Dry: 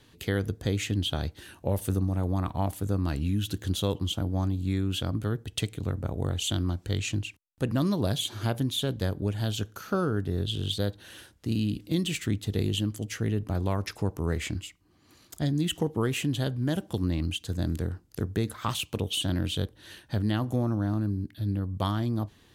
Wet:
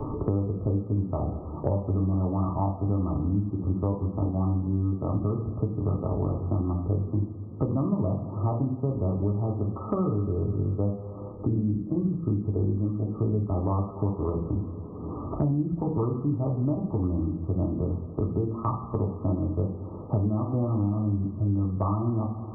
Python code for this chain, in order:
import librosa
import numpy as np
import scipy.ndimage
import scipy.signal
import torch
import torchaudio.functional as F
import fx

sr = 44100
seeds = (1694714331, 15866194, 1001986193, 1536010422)

y = fx.brickwall_lowpass(x, sr, high_hz=1300.0)
y = fx.rev_double_slope(y, sr, seeds[0], early_s=0.54, late_s=2.4, knee_db=-18, drr_db=-1.5)
y = fx.band_squash(y, sr, depth_pct=100)
y = y * librosa.db_to_amplitude(-2.0)